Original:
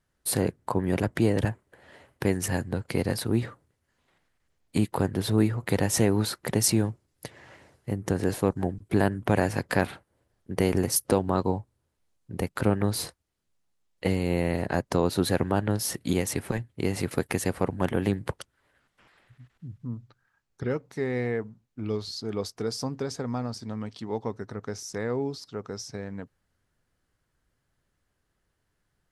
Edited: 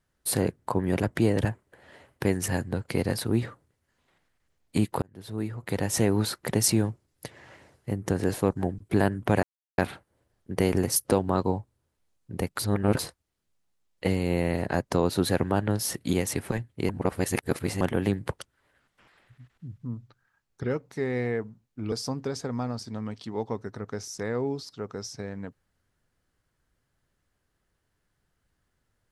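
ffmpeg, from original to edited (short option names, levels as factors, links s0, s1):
-filter_complex "[0:a]asplit=9[s0][s1][s2][s3][s4][s5][s6][s7][s8];[s0]atrim=end=5.02,asetpts=PTS-STARTPTS,afade=t=out:st=5.016:d=0.004:c=hsin[s9];[s1]atrim=start=5.02:end=9.43,asetpts=PTS-STARTPTS,afade=t=in:d=1.15,afade=t=out:st=4.406:d=0.004:c=hsin[s10];[s2]atrim=start=9.43:end=9.78,asetpts=PTS-STARTPTS,volume=0[s11];[s3]atrim=start=9.78:end=12.592,asetpts=PTS-STARTPTS,afade=t=in:d=0.004:c=hsin[s12];[s4]atrim=start=12.588:end=12.992,asetpts=PTS-STARTPTS,areverse[s13];[s5]atrim=start=12.988:end=16.892[s14];[s6]atrim=start=16.888:end=17.812,asetpts=PTS-STARTPTS,areverse[s15];[s7]atrim=start=17.808:end=21.922[s16];[s8]atrim=start=22.668[s17];[s9][s10][s11][s12]concat=n=4:v=0:a=1[s18];[s18][s13]acrossfade=d=0.004:c1=hsin:c2=hsin[s19];[s19][s14]acrossfade=d=0.004:c1=hsin:c2=hsin[s20];[s20][s15]acrossfade=d=0.004:c1=hsin:c2=hsin[s21];[s21][s16]acrossfade=d=0.004:c1=hsin:c2=hsin[s22];[s22][s17]acrossfade=d=0.004:c1=hsin:c2=hsin"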